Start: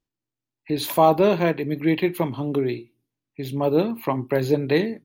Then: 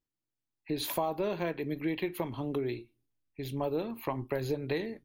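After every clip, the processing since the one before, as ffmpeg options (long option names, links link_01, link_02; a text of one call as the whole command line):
ffmpeg -i in.wav -af "asubboost=boost=10:cutoff=57,acompressor=threshold=-22dB:ratio=6,volume=-6dB" out.wav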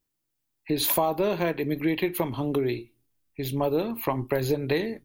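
ffmpeg -i in.wav -af "highshelf=frequency=8900:gain=8,volume=7dB" out.wav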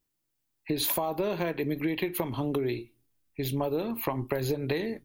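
ffmpeg -i in.wav -af "acompressor=threshold=-25dB:ratio=6" out.wav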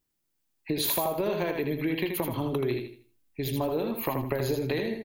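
ffmpeg -i in.wav -af "aecho=1:1:80|160|240|320:0.562|0.174|0.054|0.0168" out.wav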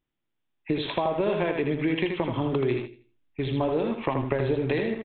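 ffmpeg -i in.wav -filter_complex "[0:a]asplit=2[link_01][link_02];[link_02]aeval=exprs='val(0)*gte(abs(val(0)),0.02)':channel_layout=same,volume=-7dB[link_03];[link_01][link_03]amix=inputs=2:normalize=0,aresample=8000,aresample=44100" out.wav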